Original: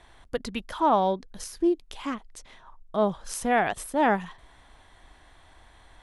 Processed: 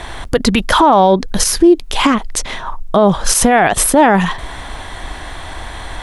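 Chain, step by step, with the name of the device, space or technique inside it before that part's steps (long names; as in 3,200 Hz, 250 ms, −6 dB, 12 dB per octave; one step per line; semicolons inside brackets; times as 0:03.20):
loud club master (downward compressor 1.5 to 1, threshold −32 dBFS, peak gain reduction 5.5 dB; hard clipping −17.5 dBFS, distortion −47 dB; boost into a limiter +27.5 dB)
level −1 dB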